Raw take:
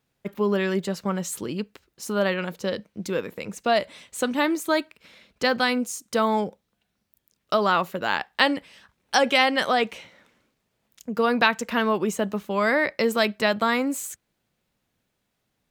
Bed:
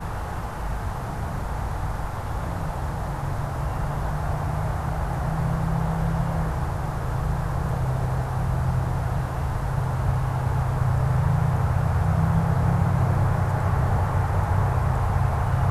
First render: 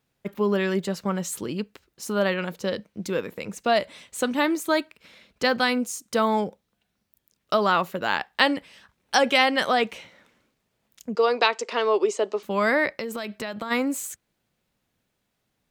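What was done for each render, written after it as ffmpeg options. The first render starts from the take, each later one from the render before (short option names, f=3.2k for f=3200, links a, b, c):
-filter_complex "[0:a]asettb=1/sr,asplit=3[a][b][c];[a]atrim=end=11.154[d];[b]atrim=start=11.15:end=12.43,asetpts=PTS-STARTPTS,afade=t=in:d=0.004:c=qsin,afade=t=out:st=1.276:d=0.004:c=qsin,highpass=f=350:w=0.5412,highpass=f=350:w=1.3066,equalizer=f=400:t=q:w=4:g=8,equalizer=f=1.6k:t=q:w=4:g=-7,equalizer=f=4.8k:t=q:w=4:g=6,lowpass=f=7.9k:w=0.5412,lowpass=f=7.9k:w=1.3066[e];[c]atrim=start=12.426[f];[d][e]acrossfade=d=0.004:c1=hsin:c2=qsin[g];[g][f]acrossfade=d=0.004:c1=qsin:c2=hsin,asplit=3[h][i][j];[h]afade=t=out:st=12.97:d=0.02[k];[i]acompressor=threshold=-27dB:ratio=10:attack=3.2:release=140:knee=1:detection=peak,afade=t=in:st=12.97:d=0.02,afade=t=out:st=13.7:d=0.02[l];[j]afade=t=in:st=13.7:d=0.02[m];[k][l][m]amix=inputs=3:normalize=0"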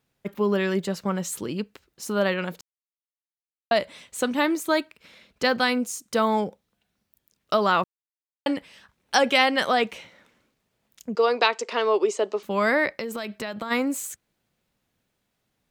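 -filter_complex "[0:a]asplit=5[a][b][c][d][e];[a]atrim=end=2.61,asetpts=PTS-STARTPTS,afade=t=out:st=2.606:d=0.004:c=hsin[f];[b]atrim=start=2.61:end=3.71,asetpts=PTS-STARTPTS,volume=0[g];[c]atrim=start=3.71:end=7.84,asetpts=PTS-STARTPTS,afade=t=in:d=0.004:c=hsin,afade=t=out:st=4.126:d=0.004:c=hsin[h];[d]atrim=start=7.84:end=8.46,asetpts=PTS-STARTPTS,volume=0[i];[e]atrim=start=8.46,asetpts=PTS-STARTPTS,afade=t=in:d=0.004:c=hsin[j];[f][g][h][i][j]concat=n=5:v=0:a=1"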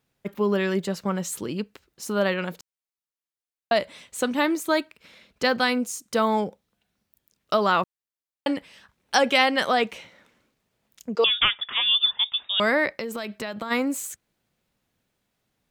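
-filter_complex "[0:a]asettb=1/sr,asplit=3[a][b][c];[a]atrim=end=11.244[d];[b]atrim=start=11.24:end=12.6,asetpts=PTS-STARTPTS,afade=t=in:d=0.004:c=qsin,afade=t=out:st=1.356:d=0.004:c=qsin,lowpass=f=3.3k:t=q:w=0.5098,lowpass=f=3.3k:t=q:w=0.6013,lowpass=f=3.3k:t=q:w=0.9,lowpass=f=3.3k:t=q:w=2.563,afreqshift=-3900[e];[c]atrim=start=12.596[f];[d][e]acrossfade=d=0.004:c1=hsin:c2=qsin[g];[g][f]acrossfade=d=0.004:c1=qsin:c2=hsin"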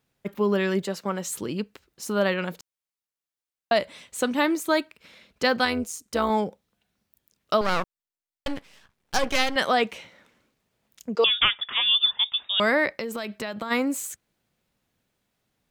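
-filter_complex "[0:a]asettb=1/sr,asplit=3[a][b][c];[a]atrim=end=0.824[d];[b]atrim=start=0.82:end=1.3,asetpts=PTS-STARTPTS,afade=t=in:d=0.004:c=qsin,afade=t=out:st=0.476:d=0.004:c=qsin,highpass=230[e];[c]atrim=start=1.296[f];[d][e]acrossfade=d=0.004:c1=hsin:c2=qsin[g];[g][f]acrossfade=d=0.004:c1=qsin:c2=hsin,asettb=1/sr,asplit=3[h][i][j];[h]atrim=end=5.654[k];[i]atrim=start=5.65:end=6.3,asetpts=PTS-STARTPTS,afade=t=in:d=0.004:c=qsin,afade=t=out:st=0.646:d=0.004:c=qsin,tremolo=f=160:d=0.571[l];[j]atrim=start=6.296[m];[k][l]acrossfade=d=0.004:c1=hsin:c2=qsin[n];[n][m]acrossfade=d=0.004:c1=qsin:c2=hsin,asettb=1/sr,asplit=3[o][p][q];[o]atrim=end=7.614[r];[p]atrim=start=7.61:end=9.56,asetpts=PTS-STARTPTS,afade=t=in:d=0.004:c=qsin,afade=t=out:st=1.946:d=0.004:c=qsin,aeval=exprs='max(val(0),0)':c=same[s];[q]atrim=start=9.556[t];[r][s]acrossfade=d=0.004:c1=hsin:c2=qsin[u];[u][t]acrossfade=d=0.004:c1=qsin:c2=hsin"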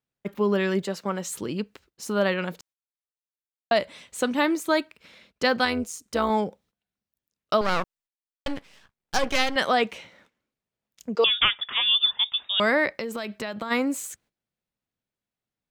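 -af "equalizer=f=14k:t=o:w=1:g=-4,agate=range=-15dB:threshold=-57dB:ratio=16:detection=peak"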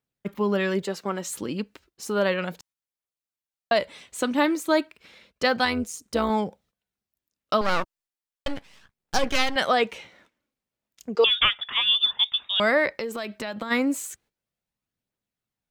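-af "aphaser=in_gain=1:out_gain=1:delay=3.9:decay=0.28:speed=0.33:type=triangular"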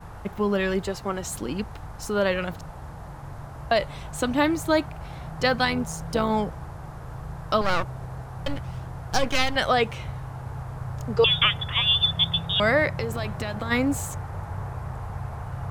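-filter_complex "[1:a]volume=-11dB[a];[0:a][a]amix=inputs=2:normalize=0"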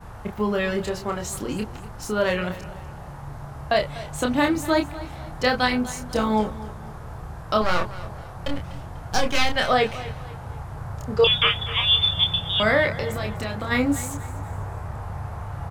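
-filter_complex "[0:a]asplit=2[a][b];[b]adelay=28,volume=-4.5dB[c];[a][c]amix=inputs=2:normalize=0,aecho=1:1:246|492|738:0.15|0.0569|0.0216"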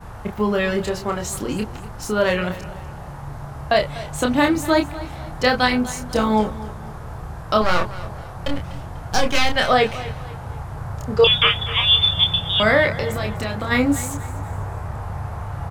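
-af "volume=3.5dB,alimiter=limit=-3dB:level=0:latency=1"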